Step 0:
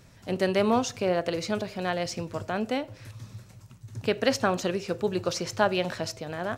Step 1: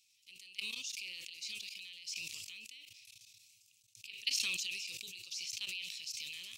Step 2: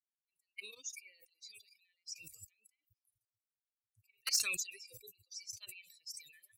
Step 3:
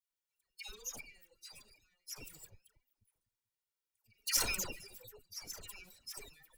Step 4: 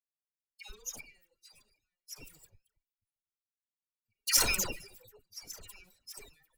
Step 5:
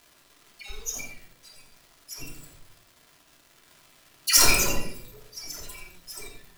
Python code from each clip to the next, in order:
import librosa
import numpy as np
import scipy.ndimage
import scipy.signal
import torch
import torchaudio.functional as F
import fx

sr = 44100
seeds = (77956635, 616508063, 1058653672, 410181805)

y1 = fx.level_steps(x, sr, step_db=21)
y1 = scipy.signal.sosfilt(scipy.signal.ellip(4, 1.0, 40, 2500.0, 'highpass', fs=sr, output='sos'), y1)
y1 = fx.sustainer(y1, sr, db_per_s=20.0)
y1 = F.gain(torch.from_numpy(y1), 1.0).numpy()
y2 = fx.bin_expand(y1, sr, power=3.0)
y2 = np.clip(10.0 ** (31.0 / 20.0) * y2, -1.0, 1.0) / 10.0 ** (31.0 / 20.0)
y2 = fx.fixed_phaser(y2, sr, hz=890.0, stages=6)
y2 = F.gain(torch.from_numpy(y2), 12.0).numpy()
y3 = fx.lower_of_two(y2, sr, delay_ms=2.1)
y3 = fx.dispersion(y3, sr, late='lows', ms=107.0, hz=1200.0)
y3 = F.gain(torch.from_numpy(y3), 2.5).numpy()
y4 = fx.band_widen(y3, sr, depth_pct=70)
y5 = fx.dmg_crackle(y4, sr, seeds[0], per_s=350.0, level_db=-49.0)
y5 = y5 + 10.0 ** (-9.0 / 20.0) * np.pad(y5, (int(86 * sr / 1000.0), 0))[:len(y5)]
y5 = fx.room_shoebox(y5, sr, seeds[1], volume_m3=870.0, walls='furnished', distance_m=3.0)
y5 = F.gain(torch.from_numpy(y5), 5.0).numpy()